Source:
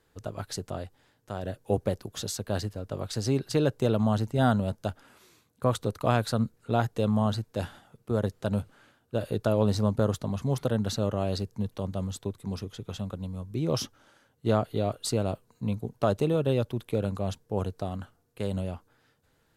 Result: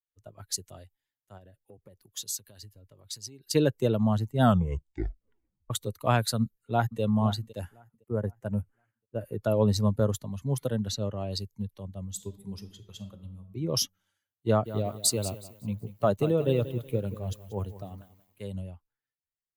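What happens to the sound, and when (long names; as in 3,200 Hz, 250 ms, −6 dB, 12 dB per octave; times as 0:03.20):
0:01.37–0:03.43: downward compressor, threshold −33 dBFS
0:04.40: tape stop 1.30 s
0:06.40–0:07.01: delay throw 510 ms, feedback 45%, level −9.5 dB
0:07.59–0:09.44: parametric band 3,700 Hz −11 dB 0.57 octaves
0:10.88–0:11.31: high-shelf EQ 8,000 Hz −9.5 dB
0:12.04–0:13.48: thrown reverb, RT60 1.4 s, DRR 5.5 dB
0:14.47–0:18.43: feedback echo at a low word length 186 ms, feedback 55%, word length 8 bits, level −8.5 dB
whole clip: spectral dynamics exaggerated over time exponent 1.5; high-shelf EQ 6,100 Hz +10 dB; multiband upward and downward expander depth 40%; level +1 dB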